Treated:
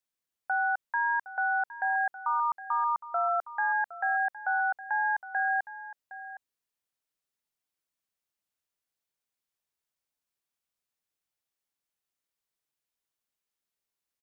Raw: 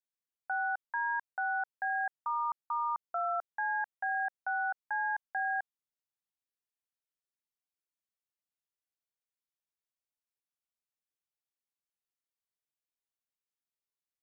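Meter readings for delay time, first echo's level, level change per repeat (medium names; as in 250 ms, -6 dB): 763 ms, -15.0 dB, no regular repeats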